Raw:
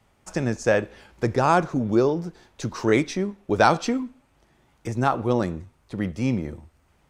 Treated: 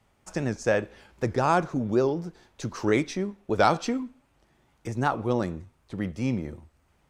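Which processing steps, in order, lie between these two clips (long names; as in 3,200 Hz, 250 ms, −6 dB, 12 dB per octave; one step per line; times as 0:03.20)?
wow of a warped record 78 rpm, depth 100 cents
level −3.5 dB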